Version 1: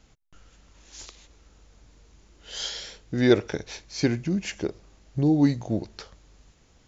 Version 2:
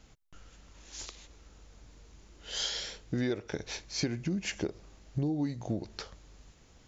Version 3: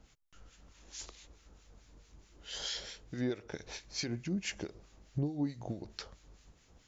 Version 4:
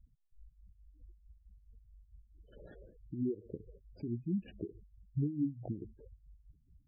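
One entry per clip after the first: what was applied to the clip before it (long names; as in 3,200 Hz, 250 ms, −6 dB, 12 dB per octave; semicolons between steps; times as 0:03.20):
downward compressor 16 to 1, threshold −28 dBFS, peak gain reduction 16.5 dB
two-band tremolo in antiphase 4.6 Hz, crossover 1,300 Hz; level −1 dB
running median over 41 samples; gate on every frequency bin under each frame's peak −10 dB strong; level +1 dB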